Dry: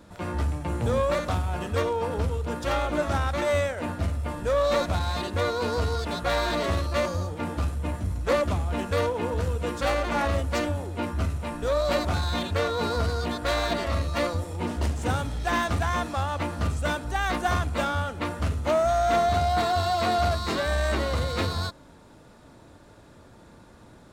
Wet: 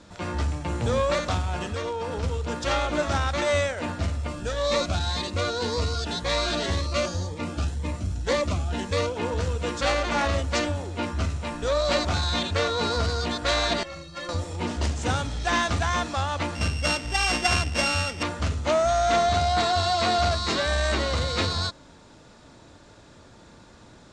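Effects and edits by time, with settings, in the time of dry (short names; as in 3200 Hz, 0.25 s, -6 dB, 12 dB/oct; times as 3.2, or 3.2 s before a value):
1.7–2.23 compressor, threshold -26 dBFS
4.27–9.17 cascading phaser rising 1.9 Hz
13.83–14.29 metallic resonator 160 Hz, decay 0.23 s, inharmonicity 0.03
16.55–18.23 sample sorter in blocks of 16 samples
whole clip: LPF 7300 Hz 24 dB/oct; high shelf 2800 Hz +9.5 dB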